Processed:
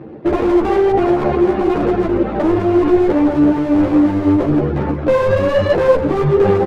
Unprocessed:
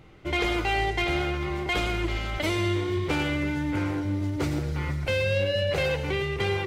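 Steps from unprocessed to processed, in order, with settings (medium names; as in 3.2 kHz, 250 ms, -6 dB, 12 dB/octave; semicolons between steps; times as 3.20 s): median filter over 41 samples; reverberation RT60 1.3 s, pre-delay 13 ms, DRR 5.5 dB; reverb removal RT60 0.61 s; band-pass 240–2600 Hz; tilt shelf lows +6 dB, about 1.1 kHz; delay 92 ms -15.5 dB; one-sided clip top -29 dBFS, bottom -17 dBFS; loudness maximiser +25.5 dB; three-phase chorus; trim -2.5 dB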